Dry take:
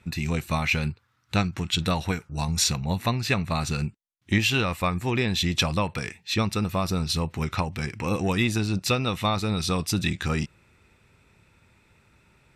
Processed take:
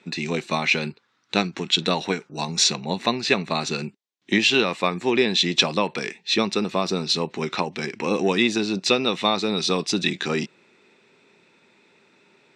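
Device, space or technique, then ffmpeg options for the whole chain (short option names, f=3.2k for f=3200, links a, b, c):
television speaker: -af "highpass=f=200:w=0.5412,highpass=f=200:w=1.3066,equalizer=f=400:t=q:w=4:g=6,equalizer=f=1.3k:t=q:w=4:g=-4,equalizer=f=3.8k:t=q:w=4:g=4,lowpass=f=7.1k:w=0.5412,lowpass=f=7.1k:w=1.3066,volume=4dB"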